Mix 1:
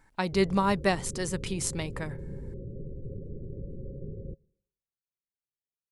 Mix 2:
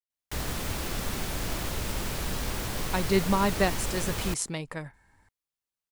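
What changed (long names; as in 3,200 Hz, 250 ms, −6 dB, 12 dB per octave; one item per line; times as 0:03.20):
speech: entry +2.75 s
background: remove Chebyshev low-pass with heavy ripple 560 Hz, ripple 9 dB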